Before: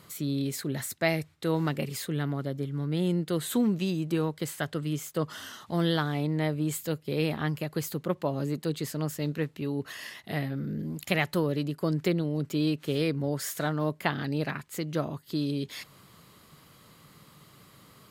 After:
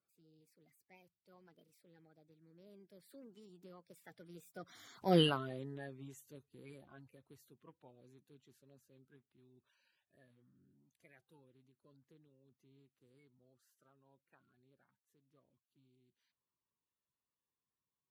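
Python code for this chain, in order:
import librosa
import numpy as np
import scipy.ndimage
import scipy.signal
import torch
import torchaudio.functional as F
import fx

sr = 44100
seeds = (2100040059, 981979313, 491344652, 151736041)

y = fx.spec_quant(x, sr, step_db=30)
y = fx.doppler_pass(y, sr, speed_mps=40, closest_m=2.6, pass_at_s=5.17)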